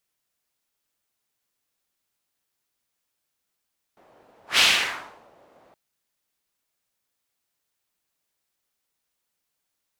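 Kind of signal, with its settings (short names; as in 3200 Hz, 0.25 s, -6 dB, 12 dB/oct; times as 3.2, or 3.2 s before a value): whoosh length 1.77 s, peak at 0.62, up 0.15 s, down 0.76 s, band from 640 Hz, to 3200 Hz, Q 1.7, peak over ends 39.5 dB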